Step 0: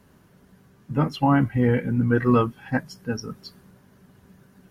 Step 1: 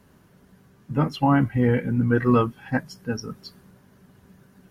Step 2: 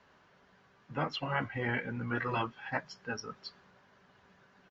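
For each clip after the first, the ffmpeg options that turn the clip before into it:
-af anull
-filter_complex "[0:a]acrossover=split=530 5100:gain=0.158 1 0.112[a][b][c];[a][b][c]amix=inputs=3:normalize=0,afftfilt=real='re*lt(hypot(re,im),0.2)':imag='im*lt(hypot(re,im),0.2)':win_size=1024:overlap=0.75,aresample=16000,aresample=44100"

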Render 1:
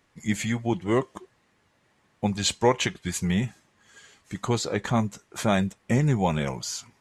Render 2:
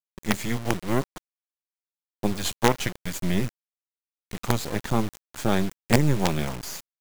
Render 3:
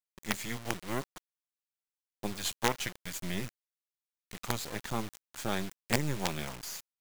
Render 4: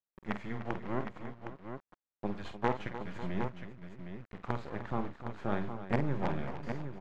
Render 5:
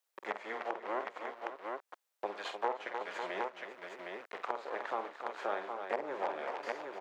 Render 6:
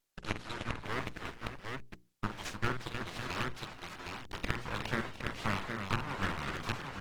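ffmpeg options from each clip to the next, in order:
-filter_complex "[0:a]acrossover=split=250|1200[a][b][c];[a]acontrast=43[d];[d][b][c]amix=inputs=3:normalize=0,acrusher=bits=3:dc=4:mix=0:aa=0.000001"
-af "tiltshelf=f=830:g=-4,volume=-8.5dB"
-af "lowpass=1.4k,aecho=1:1:49|301|548|762:0.335|0.237|0.168|0.398"
-filter_complex "[0:a]highpass=f=450:w=0.5412,highpass=f=450:w=1.3066,acrossover=split=1200[a][b];[b]alimiter=level_in=8.5dB:limit=-24dB:level=0:latency=1:release=329,volume=-8.5dB[c];[a][c]amix=inputs=2:normalize=0,acompressor=threshold=-51dB:ratio=2,volume=11.5dB"
-af "aeval=exprs='abs(val(0))':c=same,bandreject=f=60:t=h:w=6,bandreject=f=120:t=h:w=6,bandreject=f=180:t=h:w=6,bandreject=f=240:t=h:w=6,bandreject=f=300:t=h:w=6,bandreject=f=360:t=h:w=6,bandreject=f=420:t=h:w=6,volume=5.5dB" -ar 48000 -c:a libopus -b:a 16k

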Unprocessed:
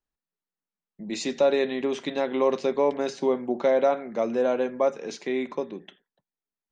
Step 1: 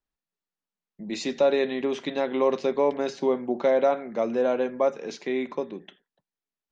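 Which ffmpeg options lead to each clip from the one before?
-af "lowpass=6.4k"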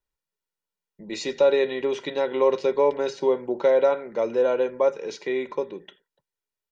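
-af "aecho=1:1:2.1:0.56"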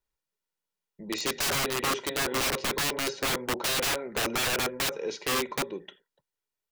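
-af "aeval=exprs='(mod(13.3*val(0)+1,2)-1)/13.3':c=same"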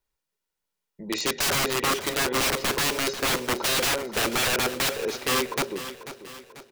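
-af "aecho=1:1:491|982|1473|1964|2455:0.224|0.107|0.0516|0.0248|0.0119,volume=3.5dB"

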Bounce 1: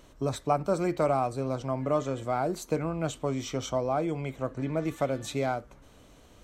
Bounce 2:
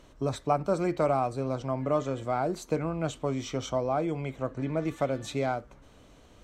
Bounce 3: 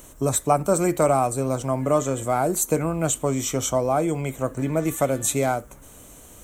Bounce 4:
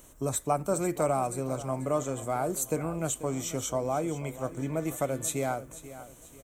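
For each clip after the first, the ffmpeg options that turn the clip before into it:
-af "highshelf=f=11k:g=-12"
-af "aexciter=amount=8.8:drive=7.5:freq=7k,volume=6.5dB"
-af "aecho=1:1:488|976|1464|1952:0.178|0.0694|0.027|0.0105,volume=-8dB"

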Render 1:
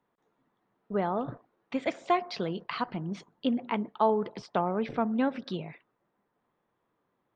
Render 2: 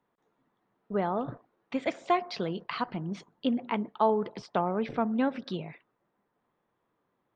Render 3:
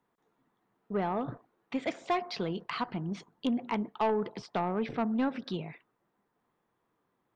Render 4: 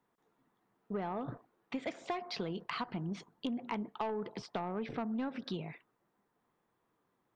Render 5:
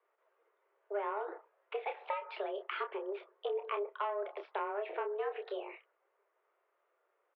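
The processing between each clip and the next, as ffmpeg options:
-af anull
-af "equalizer=f=570:w=5.9:g=-4,asoftclip=type=tanh:threshold=-21.5dB"
-af "acompressor=threshold=-33dB:ratio=6,volume=-1dB"
-filter_complex "[0:a]asplit=2[a][b];[b]adelay=29,volume=-7dB[c];[a][c]amix=inputs=2:normalize=0,highpass=f=170:t=q:w=0.5412,highpass=f=170:t=q:w=1.307,lowpass=f=2.9k:t=q:w=0.5176,lowpass=f=2.9k:t=q:w=0.7071,lowpass=f=2.9k:t=q:w=1.932,afreqshift=200"

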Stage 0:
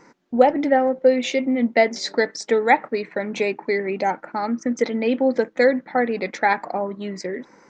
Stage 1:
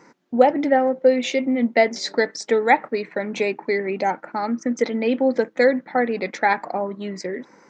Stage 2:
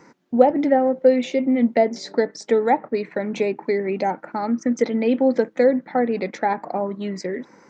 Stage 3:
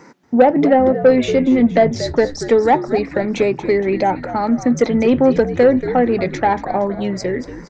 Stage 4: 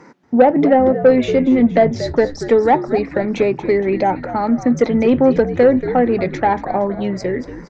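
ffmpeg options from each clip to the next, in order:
-af "highpass=82"
-filter_complex "[0:a]lowshelf=f=210:g=5.5,acrossover=split=1000[a][b];[b]acompressor=threshold=-33dB:ratio=6[c];[a][c]amix=inputs=2:normalize=0"
-filter_complex "[0:a]asplit=6[a][b][c][d][e][f];[b]adelay=233,afreqshift=-77,volume=-13dB[g];[c]adelay=466,afreqshift=-154,volume=-19dB[h];[d]adelay=699,afreqshift=-231,volume=-25dB[i];[e]adelay=932,afreqshift=-308,volume=-31.1dB[j];[f]adelay=1165,afreqshift=-385,volume=-37.1dB[k];[a][g][h][i][j][k]amix=inputs=6:normalize=0,acontrast=87,volume=-1dB"
-af "aemphasis=mode=reproduction:type=cd"

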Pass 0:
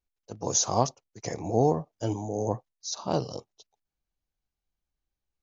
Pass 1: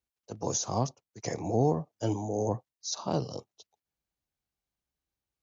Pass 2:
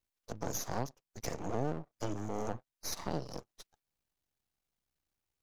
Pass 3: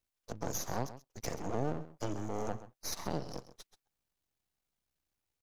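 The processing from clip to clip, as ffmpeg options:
-filter_complex "[0:a]highpass=66,acrossover=split=290[a][b];[b]alimiter=limit=-19.5dB:level=0:latency=1:release=471[c];[a][c]amix=inputs=2:normalize=0"
-af "aeval=exprs='max(val(0),0)':c=same,acompressor=threshold=-43dB:ratio=2,volume=5dB"
-af "aecho=1:1:131:0.188"

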